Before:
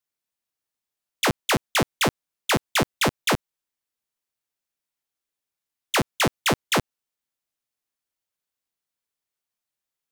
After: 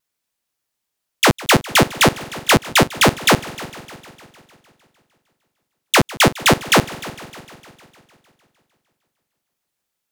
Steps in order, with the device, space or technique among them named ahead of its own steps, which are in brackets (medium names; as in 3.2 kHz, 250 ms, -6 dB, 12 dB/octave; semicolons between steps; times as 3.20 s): multi-head tape echo (multi-head delay 152 ms, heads first and second, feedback 56%, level -20.5 dB; wow and flutter); trim +8.5 dB